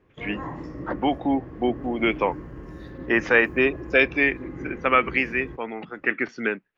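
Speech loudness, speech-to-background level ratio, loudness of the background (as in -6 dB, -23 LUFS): -23.5 LUFS, 14.5 dB, -38.0 LUFS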